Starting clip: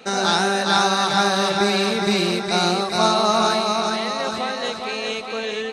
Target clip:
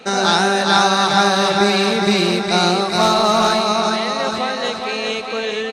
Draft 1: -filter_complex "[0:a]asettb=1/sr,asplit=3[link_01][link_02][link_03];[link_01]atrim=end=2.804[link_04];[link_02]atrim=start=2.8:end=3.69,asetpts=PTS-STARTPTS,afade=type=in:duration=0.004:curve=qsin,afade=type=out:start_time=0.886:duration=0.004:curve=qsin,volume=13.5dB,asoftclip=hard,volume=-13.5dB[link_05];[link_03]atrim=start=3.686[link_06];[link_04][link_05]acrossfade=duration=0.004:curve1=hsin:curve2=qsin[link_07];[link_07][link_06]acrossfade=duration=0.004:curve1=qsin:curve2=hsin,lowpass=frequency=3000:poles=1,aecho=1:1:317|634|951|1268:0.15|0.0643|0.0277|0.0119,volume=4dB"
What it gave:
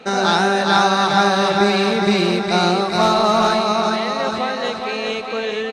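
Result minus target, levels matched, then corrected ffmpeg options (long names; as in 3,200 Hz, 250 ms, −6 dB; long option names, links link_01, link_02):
8,000 Hz band −4.5 dB
-filter_complex "[0:a]asettb=1/sr,asplit=3[link_01][link_02][link_03];[link_01]atrim=end=2.804[link_04];[link_02]atrim=start=2.8:end=3.69,asetpts=PTS-STARTPTS,afade=type=in:duration=0.004:curve=qsin,afade=type=out:start_time=0.886:duration=0.004:curve=qsin,volume=13.5dB,asoftclip=hard,volume=-13.5dB[link_05];[link_03]atrim=start=3.686[link_06];[link_04][link_05]acrossfade=duration=0.004:curve1=hsin:curve2=qsin[link_07];[link_07][link_06]acrossfade=duration=0.004:curve1=qsin:curve2=hsin,lowpass=frequency=9200:poles=1,aecho=1:1:317|634|951|1268:0.15|0.0643|0.0277|0.0119,volume=4dB"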